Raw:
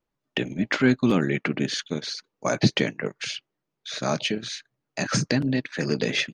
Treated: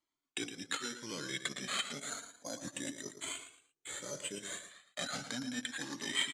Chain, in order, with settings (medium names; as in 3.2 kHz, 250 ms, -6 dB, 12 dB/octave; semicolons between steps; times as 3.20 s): rotating-head pitch shifter -1 st; reverse; compression, threshold -30 dBFS, peak gain reduction 13.5 dB; reverse; peaking EQ 2.6 kHz -9 dB 0.2 oct; careless resampling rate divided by 8×, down none, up hold; tilt EQ +4 dB/octave; small resonant body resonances 280/3100 Hz, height 9 dB; on a send: feedback delay 113 ms, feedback 30%, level -9.5 dB; on the sum: time-frequency box 1.99–4.71 s, 730–5600 Hz -8 dB; low-pass 7.9 kHz 24 dB/octave; Shepard-style flanger rising 0.32 Hz; trim -1 dB